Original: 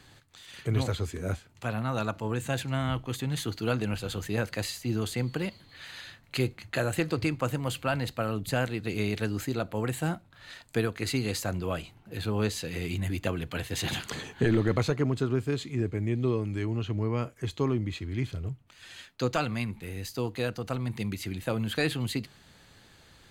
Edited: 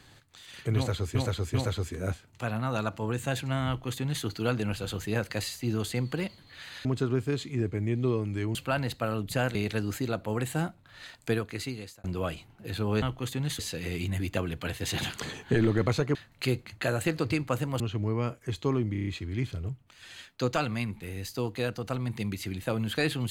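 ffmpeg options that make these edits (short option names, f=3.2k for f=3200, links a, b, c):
-filter_complex "[0:a]asplit=16[a][b][c][d][e][f][g][h][i][j][k][l][m][n][o][p];[a]atrim=end=1.152[q];[b]atrim=start=0.758:end=1.152[r];[c]atrim=start=0.758:end=6.072[s];[d]atrim=start=15.048:end=16.752[t];[e]atrim=start=7.718:end=8.722[u];[f]atrim=start=9.018:end=11.51,asetpts=PTS-STARTPTS,afade=t=out:st=1.742:d=0.75[v];[g]atrim=start=11.51:end=12.492,asetpts=PTS-STARTPTS,afade=t=in:d=0.004:c=hsin[w];[h]atrim=start=2.888:end=3.462[x];[i]atrim=start=12.488:end=15.052[y];[j]atrim=start=6.068:end=7.722[z];[k]atrim=start=16.748:end=17.902[aa];[l]atrim=start=17.868:end=17.902[ab];[m]atrim=start=17.868:end=17.902[ac];[n]atrim=start=17.868:end=17.902[ad];[o]atrim=start=17.868:end=17.902[ae];[p]atrim=start=17.868[af];[q][r]acrossfade=d=0.004:c1=hsin:c2=hsin[ag];[ag][s]acrossfade=d=0.004:c1=hsin:c2=hsin[ah];[ah][t]acrossfade=d=0.004:c1=hsin:c2=hsin[ai];[ai][u]acrossfade=d=0.004:c1=hsin:c2=hsin[aj];[v][w]concat=n=2:v=0:a=1[ak];[aj][ak]acrossfade=d=0.004:c1=hsin:c2=hsin[al];[al][x]acrossfade=d=0.004:c1=hsin:c2=hsin[am];[am][y]acrossfade=d=0.004:c1=hsin:c2=hsin[an];[an][z]acrossfade=d=0.004:c1=hsin:c2=hsin[ao];[ao][aa]acrossfade=d=0.004:c1=hsin:c2=hsin[ap];[ap][ab]acrossfade=d=0.004:c1=hsin:c2=hsin[aq];[aq][ac]acrossfade=d=0.004:c1=hsin:c2=hsin[ar];[ar][ad]acrossfade=d=0.004:c1=hsin:c2=hsin[as];[as][ae]acrossfade=d=0.004:c1=hsin:c2=hsin[at];[at][af]acrossfade=d=0.004:c1=hsin:c2=hsin"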